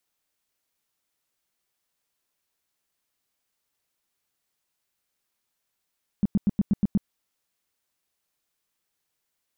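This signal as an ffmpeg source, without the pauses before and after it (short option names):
-f lavfi -i "aevalsrc='0.15*sin(2*PI*202*mod(t,0.12))*lt(mod(t,0.12),5/202)':d=0.84:s=44100"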